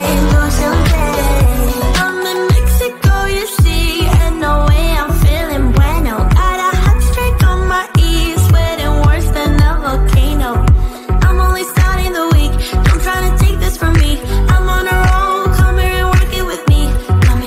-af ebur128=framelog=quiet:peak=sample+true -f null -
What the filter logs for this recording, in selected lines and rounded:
Integrated loudness:
  I:         -12.9 LUFS
  Threshold: -22.9 LUFS
Loudness range:
  LRA:         0.8 LU
  Threshold: -33.0 LUFS
  LRA low:   -13.4 LUFS
  LRA high:  -12.6 LUFS
Sample peak:
  Peak:       -1.3 dBFS
True peak:
  Peak:       -1.3 dBFS